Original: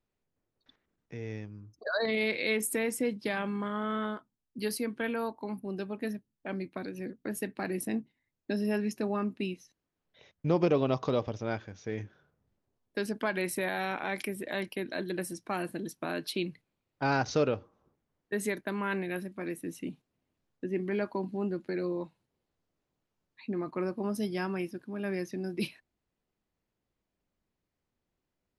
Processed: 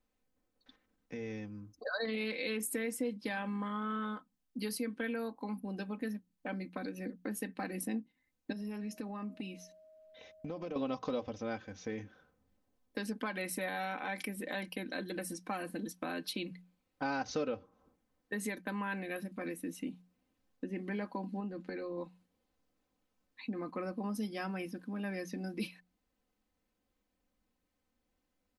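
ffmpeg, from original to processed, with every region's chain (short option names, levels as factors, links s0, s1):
-filter_complex "[0:a]asettb=1/sr,asplit=3[s0][s1][s2];[s0]atrim=end=8.524[s3];[s1]atrim=start=8.52:end=10.76,asetpts=PTS-STARTPTS,afade=t=in:d=0.004:c=qsin,afade=t=out:st=2.236:d=0.004:c=qsin,acompressor=threshold=0.0126:ratio=4:attack=3.2:release=140:knee=1:detection=peak,aeval=exprs='val(0)+0.00282*sin(2*PI*630*n/s)':c=same[s4];[s2]atrim=start=10.756[s5];[s3][s4]acrossfade=d=0.004:c1=hsin:c2=qsin[s6];[s6][s5]acrossfade=d=0.004:c1=qsin:c2=hsin,asettb=1/sr,asplit=3[s7][s8][s9];[s7]atrim=end=21.404[s10];[s8]atrim=start=21.4:end=21.98,asetpts=PTS-STARTPTS,afade=t=in:d=0.004:c=qsin,afade=t=out:st=0.576:d=0.004:c=qsin,highshelf=f=9900:g=-11.5,acompressor=threshold=0.02:ratio=2.5:attack=3.2:release=140:knee=1:detection=peak[s11];[s9]atrim=start=21.976[s12];[s10][s11]acrossfade=d=0.004:c1=hsin:c2=qsin[s13];[s13][s12]acrossfade=d=0.004:c1=qsin:c2=hsin,bandreject=f=60:t=h:w=6,bandreject=f=120:t=h:w=6,bandreject=f=180:t=h:w=6,aecho=1:1:3.9:0.67,acompressor=threshold=0.00891:ratio=2,volume=1.12"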